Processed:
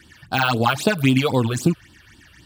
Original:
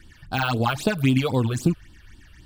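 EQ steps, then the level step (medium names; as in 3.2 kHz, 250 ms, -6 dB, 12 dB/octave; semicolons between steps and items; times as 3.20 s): high-pass 87 Hz; bass shelf 350 Hz -4 dB; +5.5 dB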